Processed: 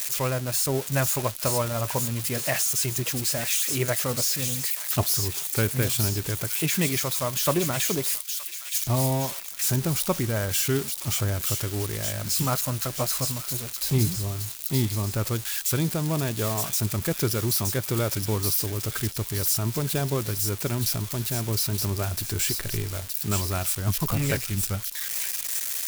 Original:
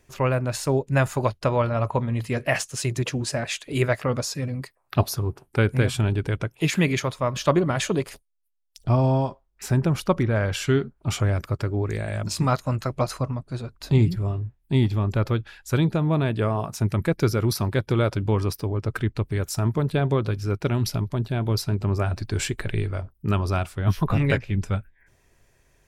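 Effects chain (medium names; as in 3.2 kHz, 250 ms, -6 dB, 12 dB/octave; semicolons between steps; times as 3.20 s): zero-crossing glitches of -15.5 dBFS; on a send: feedback echo behind a high-pass 920 ms, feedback 51%, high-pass 2.9 kHz, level -3.5 dB; on the sum: trim -4.5 dB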